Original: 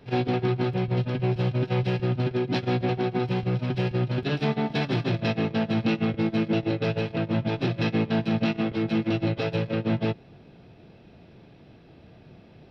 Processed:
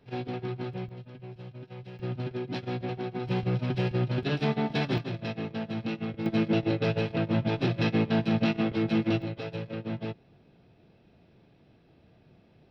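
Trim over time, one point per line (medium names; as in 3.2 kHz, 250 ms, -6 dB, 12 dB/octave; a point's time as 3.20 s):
-9.5 dB
from 0.89 s -18.5 dB
from 1.99 s -8 dB
from 3.27 s -2 dB
from 4.98 s -8.5 dB
from 6.26 s -1 dB
from 9.22 s -9 dB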